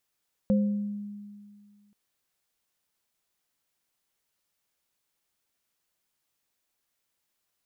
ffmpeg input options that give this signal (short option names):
-f lavfi -i "aevalsrc='0.112*pow(10,-3*t/2.04)*sin(2*PI*205*t)+0.0531*pow(10,-3*t/0.61)*sin(2*PI*523*t)':d=1.43:s=44100"